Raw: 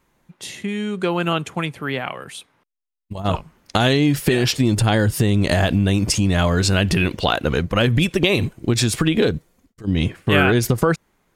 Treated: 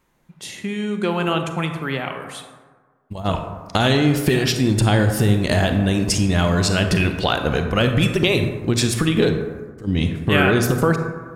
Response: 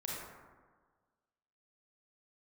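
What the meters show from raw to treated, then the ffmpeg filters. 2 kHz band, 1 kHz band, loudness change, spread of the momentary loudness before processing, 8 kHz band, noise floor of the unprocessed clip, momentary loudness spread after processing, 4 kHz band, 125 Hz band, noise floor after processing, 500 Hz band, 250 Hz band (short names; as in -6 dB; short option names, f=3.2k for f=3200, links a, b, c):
0.0 dB, 0.0 dB, 0.0 dB, 11 LU, -0.5 dB, -67 dBFS, 11 LU, -0.5 dB, 0.0 dB, -59 dBFS, +0.5 dB, 0.0 dB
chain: -filter_complex "[0:a]asplit=2[a][b];[1:a]atrim=start_sample=2205[c];[b][c]afir=irnorm=-1:irlink=0,volume=-3dB[d];[a][d]amix=inputs=2:normalize=0,volume=-4dB"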